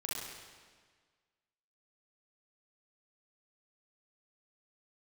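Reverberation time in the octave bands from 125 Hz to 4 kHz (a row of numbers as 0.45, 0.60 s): 1.6, 1.7, 1.6, 1.6, 1.6, 1.4 s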